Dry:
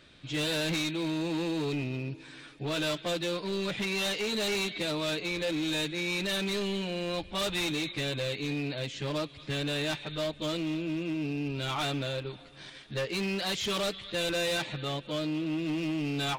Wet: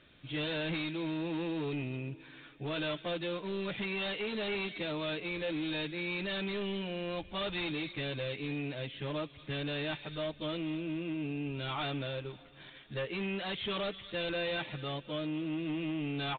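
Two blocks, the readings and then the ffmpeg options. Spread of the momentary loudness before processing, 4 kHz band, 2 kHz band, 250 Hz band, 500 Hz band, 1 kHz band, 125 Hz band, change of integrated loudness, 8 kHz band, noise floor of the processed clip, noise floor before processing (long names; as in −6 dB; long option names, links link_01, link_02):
6 LU, −6.5 dB, −4.0 dB, −4.0 dB, −4.0 dB, −4.0 dB, −4.0 dB, −5.0 dB, below −40 dB, −55 dBFS, −50 dBFS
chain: -af "aresample=8000,aresample=44100,volume=-4dB"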